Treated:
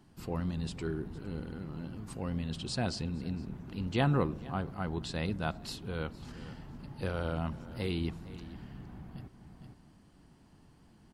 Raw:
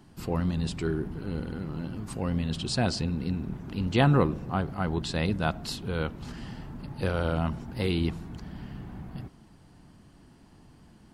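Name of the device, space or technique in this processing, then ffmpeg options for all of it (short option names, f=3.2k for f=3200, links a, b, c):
ducked delay: -filter_complex "[0:a]asplit=3[a][b][c];[b]adelay=460,volume=-6dB[d];[c]apad=whole_len=511388[e];[d][e]sidechaincompress=threshold=-46dB:ratio=5:attack=6.4:release=246[f];[a][f]amix=inputs=2:normalize=0,volume=-6.5dB"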